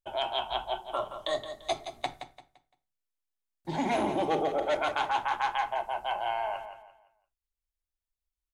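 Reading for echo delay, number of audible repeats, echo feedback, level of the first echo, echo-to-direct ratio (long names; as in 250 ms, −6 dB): 171 ms, 3, 32%, −10.0 dB, −9.5 dB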